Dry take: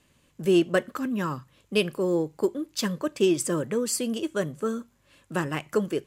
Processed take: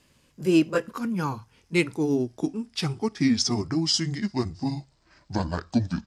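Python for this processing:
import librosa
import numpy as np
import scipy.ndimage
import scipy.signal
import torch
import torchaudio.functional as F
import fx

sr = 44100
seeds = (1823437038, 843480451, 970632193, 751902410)

y = fx.pitch_glide(x, sr, semitones=-11.0, runs='starting unshifted')
y = fx.peak_eq(y, sr, hz=5000.0, db=9.5, octaves=0.22)
y = y * 10.0 ** (1.5 / 20.0)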